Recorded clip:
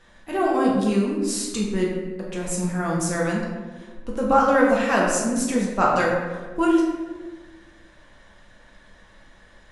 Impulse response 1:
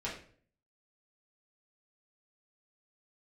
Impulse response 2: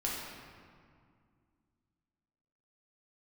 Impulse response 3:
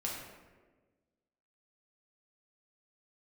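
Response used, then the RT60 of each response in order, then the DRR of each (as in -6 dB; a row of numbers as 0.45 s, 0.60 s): 3; 0.50 s, 2.1 s, 1.4 s; -7.5 dB, -5.5 dB, -3.5 dB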